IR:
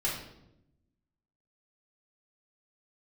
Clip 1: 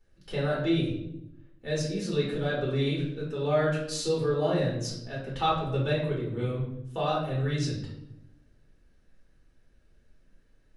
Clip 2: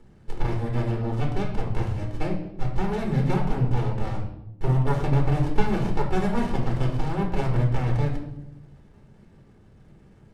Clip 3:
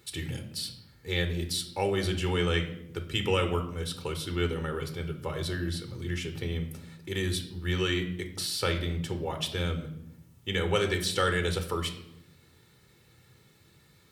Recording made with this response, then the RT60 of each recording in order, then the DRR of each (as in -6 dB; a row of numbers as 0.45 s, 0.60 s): 1; 0.85 s, 0.85 s, 0.85 s; -6.0 dB, -0.5 dB, 6.0 dB